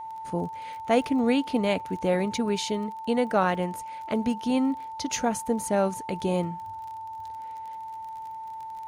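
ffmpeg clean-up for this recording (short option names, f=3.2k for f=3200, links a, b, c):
-af "adeclick=t=4,bandreject=f=890:w=30"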